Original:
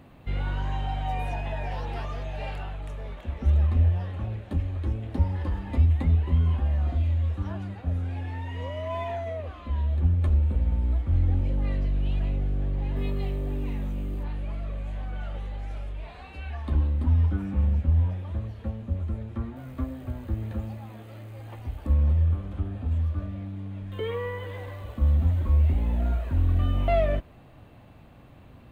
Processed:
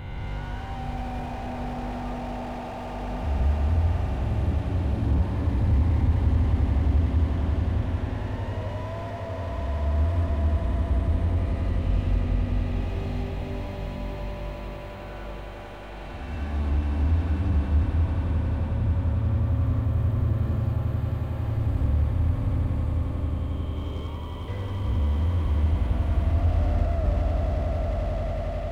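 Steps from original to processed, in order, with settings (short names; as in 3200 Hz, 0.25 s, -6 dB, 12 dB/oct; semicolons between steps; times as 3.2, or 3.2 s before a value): spectral swells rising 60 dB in 2.68 s; 22.79–24.48 fixed phaser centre 470 Hz, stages 6; on a send: swelling echo 90 ms, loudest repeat 8, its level -8 dB; on the sum: flange 0.49 Hz, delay 8.2 ms, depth 3.1 ms, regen -76%; slew limiter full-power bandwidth 16 Hz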